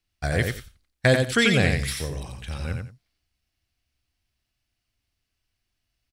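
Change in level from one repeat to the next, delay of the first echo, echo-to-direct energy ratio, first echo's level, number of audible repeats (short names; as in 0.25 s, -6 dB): -14.0 dB, 89 ms, -5.0 dB, -5.0 dB, 2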